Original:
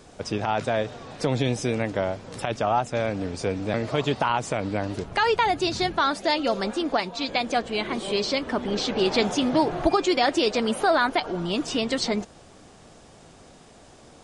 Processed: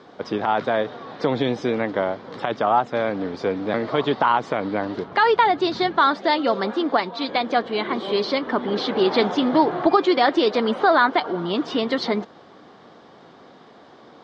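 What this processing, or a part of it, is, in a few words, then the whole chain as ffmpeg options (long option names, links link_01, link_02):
kitchen radio: -af "highpass=220,equalizer=frequency=620:width_type=q:width=4:gain=-3,equalizer=frequency=1100:width_type=q:width=4:gain=3,equalizer=frequency=2600:width_type=q:width=4:gain=-10,lowpass=frequency=3900:width=0.5412,lowpass=frequency=3900:width=1.3066,volume=5dB"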